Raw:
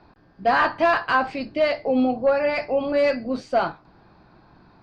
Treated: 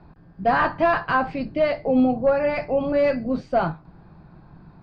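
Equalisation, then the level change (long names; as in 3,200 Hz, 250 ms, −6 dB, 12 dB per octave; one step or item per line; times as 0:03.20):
low-pass filter 2,100 Hz 6 dB per octave
low-shelf EQ 100 Hz +10.5 dB
parametric band 160 Hz +10.5 dB 0.44 octaves
0.0 dB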